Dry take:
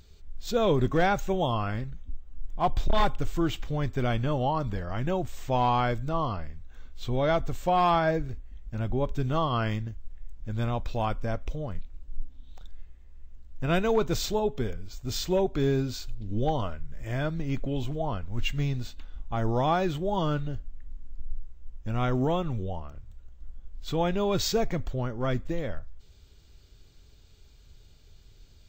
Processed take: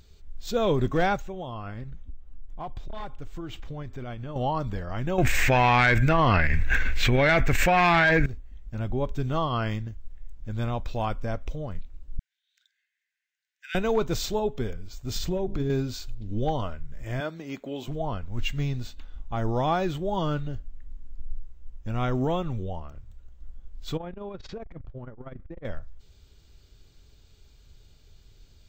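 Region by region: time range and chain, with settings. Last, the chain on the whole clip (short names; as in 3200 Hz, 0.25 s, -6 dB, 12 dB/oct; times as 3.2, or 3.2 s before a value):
1.16–4.36 high shelf 4400 Hz -7 dB + compressor, threshold -32 dBFS
5.18–8.26 band shelf 2000 Hz +15.5 dB 1 oct + tube stage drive 13 dB, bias 0.5 + fast leveller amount 100%
12.19–13.75 rippled Chebyshev high-pass 1500 Hz, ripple 3 dB + mismatched tape noise reduction decoder only
15.16–15.7 low shelf 360 Hz +10 dB + notches 50/100/150/200/250/300/350/400/450 Hz + compressor 10:1, threshold -23 dBFS
17.2–17.88 HPF 290 Hz + high shelf 8500 Hz +3.5 dB
23.97–25.65 LPF 2000 Hz + compressor, threshold -32 dBFS + core saturation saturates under 100 Hz
whole clip: dry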